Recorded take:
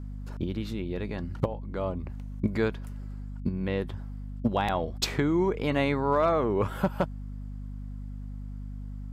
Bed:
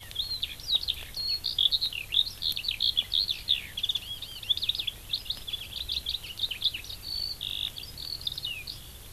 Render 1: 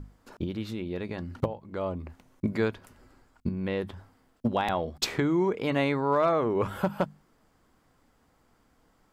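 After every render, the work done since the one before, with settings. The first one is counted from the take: hum notches 50/100/150/200/250 Hz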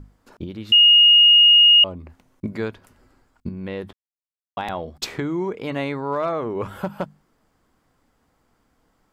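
0.72–1.84 s: bleep 2.86 kHz -8.5 dBFS; 3.93–4.57 s: mute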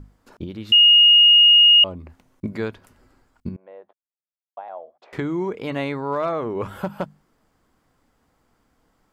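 3.56–5.13 s: ladder band-pass 720 Hz, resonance 55%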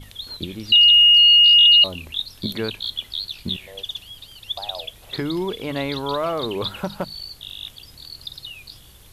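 add bed -2 dB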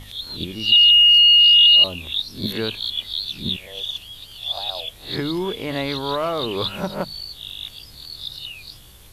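reverse spectral sustain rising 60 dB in 0.35 s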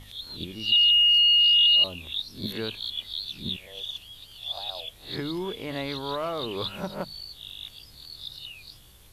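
trim -7 dB

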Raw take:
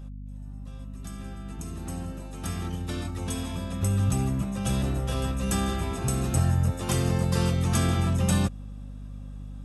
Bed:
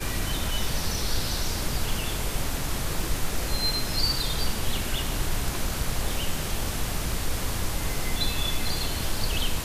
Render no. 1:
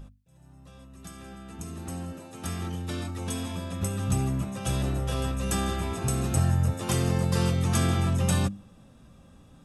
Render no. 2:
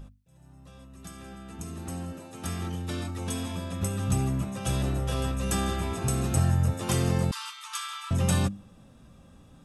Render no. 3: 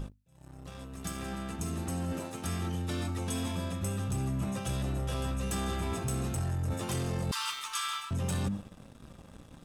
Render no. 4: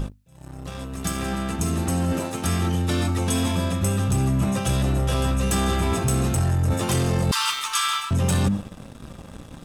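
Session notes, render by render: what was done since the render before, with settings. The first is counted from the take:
hum notches 50/100/150/200/250/300 Hz
7.31–8.11 s: rippled Chebyshev high-pass 890 Hz, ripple 6 dB
waveshaping leveller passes 2; reverse; compression 6:1, threshold -31 dBFS, peak gain reduction 14 dB; reverse
trim +11 dB

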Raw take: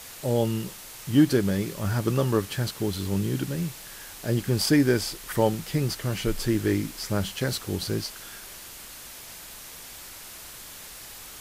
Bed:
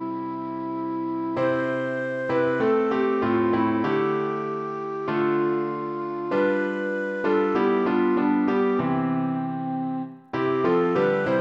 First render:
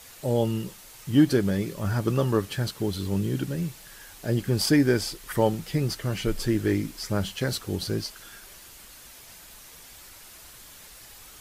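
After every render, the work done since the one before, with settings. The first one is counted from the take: noise reduction 6 dB, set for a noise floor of -43 dBFS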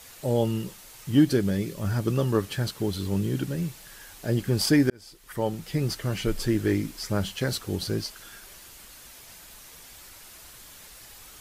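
1.19–2.35 s: peaking EQ 1 kHz -4 dB 1.8 oct; 4.90–5.89 s: fade in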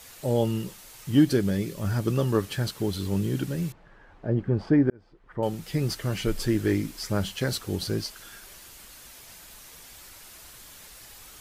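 3.72–5.43 s: low-pass 1.2 kHz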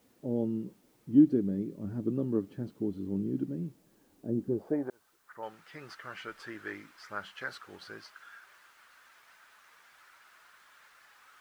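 band-pass sweep 270 Hz -> 1.4 kHz, 4.44–5.07 s; word length cut 12-bit, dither triangular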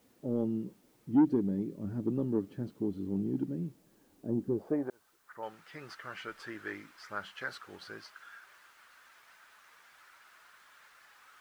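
saturation -18 dBFS, distortion -13 dB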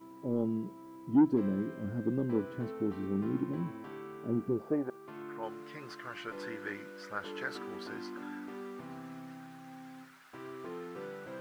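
add bed -22 dB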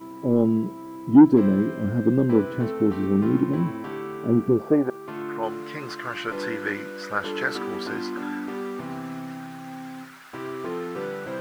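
trim +12 dB

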